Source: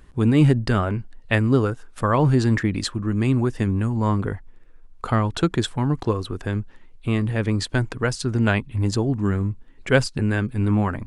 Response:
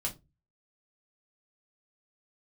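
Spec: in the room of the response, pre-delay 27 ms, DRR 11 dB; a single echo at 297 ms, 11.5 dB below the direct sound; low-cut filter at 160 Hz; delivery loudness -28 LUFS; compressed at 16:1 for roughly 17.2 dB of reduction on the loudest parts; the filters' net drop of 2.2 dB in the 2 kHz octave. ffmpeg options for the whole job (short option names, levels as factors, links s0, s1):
-filter_complex "[0:a]highpass=160,equalizer=f=2000:t=o:g=-3,acompressor=threshold=0.0316:ratio=16,aecho=1:1:297:0.266,asplit=2[s0][s1];[1:a]atrim=start_sample=2205,adelay=27[s2];[s1][s2]afir=irnorm=-1:irlink=0,volume=0.211[s3];[s0][s3]amix=inputs=2:normalize=0,volume=2.37"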